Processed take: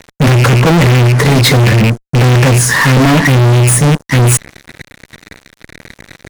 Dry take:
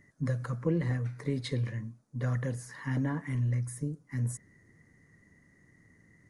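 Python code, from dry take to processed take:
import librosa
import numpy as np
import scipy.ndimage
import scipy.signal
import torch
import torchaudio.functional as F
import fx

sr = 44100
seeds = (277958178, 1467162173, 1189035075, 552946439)

y = fx.rattle_buzz(x, sr, strikes_db=-38.0, level_db=-38.0)
y = fx.fuzz(y, sr, gain_db=47.0, gate_db=-56.0)
y = y * librosa.db_to_amplitude(7.0)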